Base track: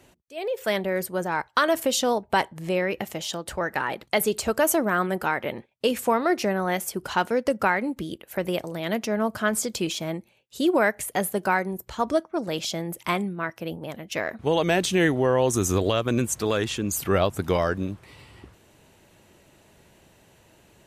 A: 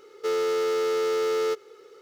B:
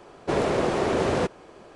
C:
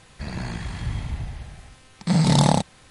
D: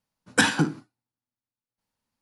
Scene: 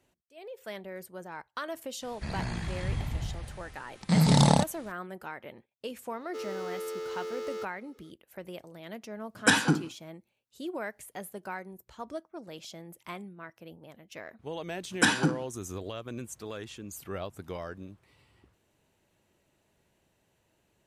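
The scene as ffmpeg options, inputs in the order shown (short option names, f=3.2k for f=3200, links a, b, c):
-filter_complex "[4:a]asplit=2[a][b];[0:a]volume=-15.5dB[c];[3:a]atrim=end=2.9,asetpts=PTS-STARTPTS,volume=-3.5dB,afade=t=in:d=0.004:c=hsin,afade=t=out:st=2.896:d=0.004:c=hsin,adelay=2020[d];[1:a]atrim=end=2.01,asetpts=PTS-STARTPTS,volume=-12dB,afade=t=in:d=0.004:c=hsin,afade=t=out:st=2.006:d=0.004:c=hsin,adelay=269010S[e];[a]atrim=end=2.21,asetpts=PTS-STARTPTS,volume=-2dB,afade=t=in:d=0.004:c=hsin,afade=t=out:st=2.206:d=0.004:c=hsin,adelay=9090[f];[b]atrim=end=2.21,asetpts=PTS-STARTPTS,volume=-3.5dB,afade=t=in:d=0.004:c=hsin,afade=t=out:st=2.206:d=0.004:c=hsin,adelay=14640[g];[c][d][e][f][g]amix=inputs=5:normalize=0"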